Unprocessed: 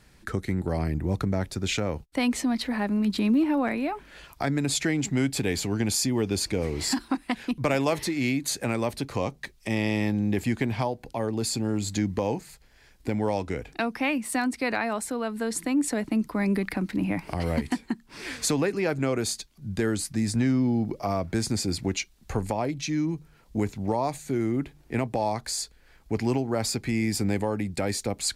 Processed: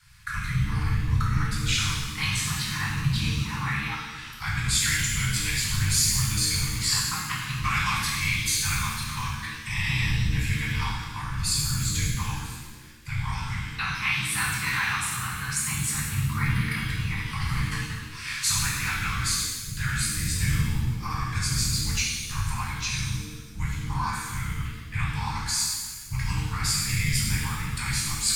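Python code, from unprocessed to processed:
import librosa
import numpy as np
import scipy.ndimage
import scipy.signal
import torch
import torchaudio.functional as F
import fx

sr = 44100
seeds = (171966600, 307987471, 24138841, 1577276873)

y = fx.whisperise(x, sr, seeds[0])
y = scipy.signal.sosfilt(scipy.signal.ellip(3, 1.0, 40, [140.0, 1100.0], 'bandstop', fs=sr, output='sos'), y)
y = fx.rev_shimmer(y, sr, seeds[1], rt60_s=1.3, semitones=7, shimmer_db=-8, drr_db=-5.5)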